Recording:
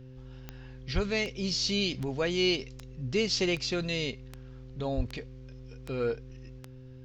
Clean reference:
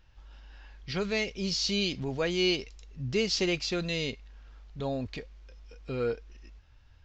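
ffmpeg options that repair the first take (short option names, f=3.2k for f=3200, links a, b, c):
-filter_complex "[0:a]adeclick=t=4,bandreject=f=129:t=h:w=4,bandreject=f=258:t=h:w=4,bandreject=f=387:t=h:w=4,bandreject=f=516:t=h:w=4,asplit=3[a][b][c];[a]afade=t=out:st=0.94:d=0.02[d];[b]highpass=f=140:w=0.5412,highpass=f=140:w=1.3066,afade=t=in:st=0.94:d=0.02,afade=t=out:st=1.06:d=0.02[e];[c]afade=t=in:st=1.06:d=0.02[f];[d][e][f]amix=inputs=3:normalize=0,asplit=3[g][h][i];[g]afade=t=out:st=4.96:d=0.02[j];[h]highpass=f=140:w=0.5412,highpass=f=140:w=1.3066,afade=t=in:st=4.96:d=0.02,afade=t=out:st=5.08:d=0.02[k];[i]afade=t=in:st=5.08:d=0.02[l];[j][k][l]amix=inputs=3:normalize=0"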